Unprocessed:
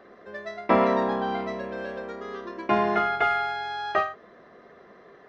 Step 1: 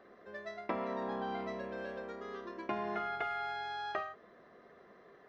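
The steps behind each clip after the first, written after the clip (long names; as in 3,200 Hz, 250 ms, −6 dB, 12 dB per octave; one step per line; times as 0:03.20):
downward compressor 12 to 1, threshold −25 dBFS, peak gain reduction 10.5 dB
level −8 dB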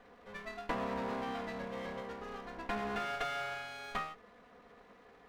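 lower of the sound and its delayed copy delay 4.1 ms
level +1.5 dB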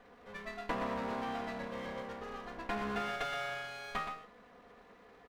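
single-tap delay 121 ms −8 dB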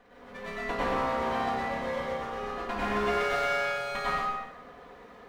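dense smooth reverb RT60 1.2 s, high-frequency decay 0.65×, pre-delay 85 ms, DRR −8 dB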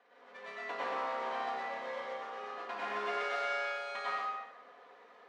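band-pass filter 490–6,000 Hz
level −6 dB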